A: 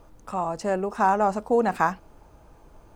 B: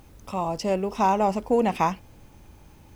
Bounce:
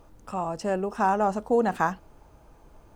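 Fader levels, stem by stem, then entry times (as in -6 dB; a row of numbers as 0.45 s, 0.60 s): -2.0 dB, -16.5 dB; 0.00 s, 0.00 s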